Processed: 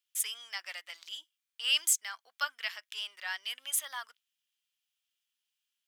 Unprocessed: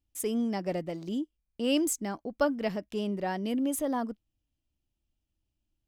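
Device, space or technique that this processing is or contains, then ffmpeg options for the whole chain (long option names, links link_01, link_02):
headphones lying on a table: -af "highpass=frequency=1400:width=0.5412,highpass=frequency=1400:width=1.3066,equalizer=frequency=3300:width_type=o:width=0.32:gain=5.5,volume=5.5dB"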